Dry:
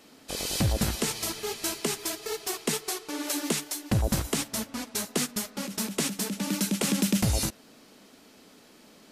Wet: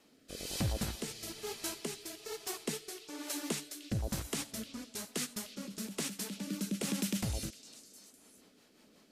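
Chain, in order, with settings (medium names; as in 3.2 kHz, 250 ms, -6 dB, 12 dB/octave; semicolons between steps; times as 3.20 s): rotary cabinet horn 1.1 Hz, later 5.5 Hz, at 7.39 s; repeats whose band climbs or falls 305 ms, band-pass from 3.5 kHz, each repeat 0.7 oct, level -10 dB; trim -7.5 dB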